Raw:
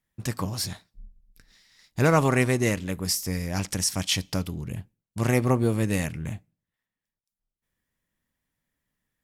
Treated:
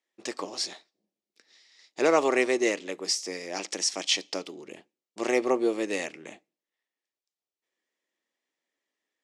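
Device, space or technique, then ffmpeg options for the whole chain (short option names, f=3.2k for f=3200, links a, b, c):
phone speaker on a table: -af "highpass=f=340:w=0.5412,highpass=f=340:w=1.3066,equalizer=f=350:t=q:w=4:g=4,equalizer=f=1k:t=q:w=4:g=-4,equalizer=f=1.5k:t=q:w=4:g=-7,lowpass=f=7.2k:w=0.5412,lowpass=f=7.2k:w=1.3066,volume=1dB"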